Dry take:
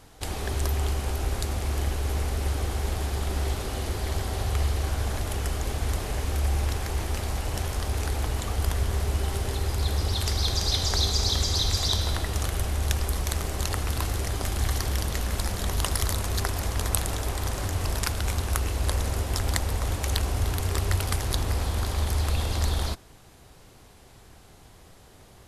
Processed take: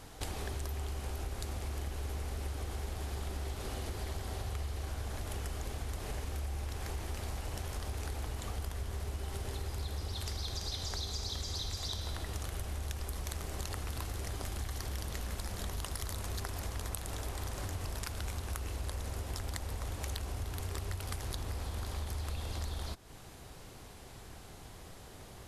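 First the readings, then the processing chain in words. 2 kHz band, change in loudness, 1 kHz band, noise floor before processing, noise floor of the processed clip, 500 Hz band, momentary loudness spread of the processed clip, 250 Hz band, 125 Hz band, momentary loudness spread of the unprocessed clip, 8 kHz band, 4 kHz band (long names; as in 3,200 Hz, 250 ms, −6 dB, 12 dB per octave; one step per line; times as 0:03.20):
−11.5 dB, −12.0 dB, −11.0 dB, −52 dBFS, −51 dBFS, −11.0 dB, 3 LU, −11.0 dB, −11.5 dB, 6 LU, −12.0 dB, −12.5 dB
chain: downward compressor, threshold −37 dBFS, peak gain reduction 17 dB
level +1 dB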